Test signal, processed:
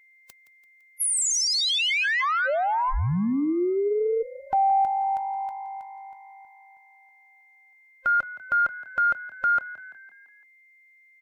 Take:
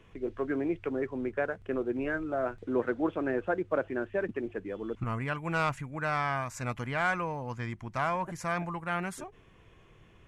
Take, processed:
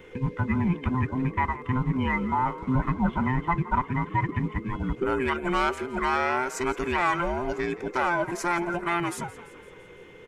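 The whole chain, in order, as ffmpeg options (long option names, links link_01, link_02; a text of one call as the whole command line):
ffmpeg -i in.wav -filter_complex "[0:a]afftfilt=real='real(if(between(b,1,1008),(2*floor((b-1)/24)+1)*24-b,b),0)':imag='imag(if(between(b,1,1008),(2*floor((b-1)/24)+1)*24-b,b),0)*if(between(b,1,1008),-1,1)':win_size=2048:overlap=0.75,asplit=2[link_01][link_02];[link_02]alimiter=level_in=3.5dB:limit=-24dB:level=0:latency=1:release=417,volume=-3.5dB,volume=3dB[link_03];[link_01][link_03]amix=inputs=2:normalize=0,asplit=6[link_04][link_05][link_06][link_07][link_08][link_09];[link_05]adelay=169,afreqshift=50,volume=-17dB[link_10];[link_06]adelay=338,afreqshift=100,volume=-22.2dB[link_11];[link_07]adelay=507,afreqshift=150,volume=-27.4dB[link_12];[link_08]adelay=676,afreqshift=200,volume=-32.6dB[link_13];[link_09]adelay=845,afreqshift=250,volume=-37.8dB[link_14];[link_04][link_10][link_11][link_12][link_13][link_14]amix=inputs=6:normalize=0,aeval=exprs='val(0)+0.00158*sin(2*PI*2100*n/s)':channel_layout=same,acontrast=31,volume=-4dB" out.wav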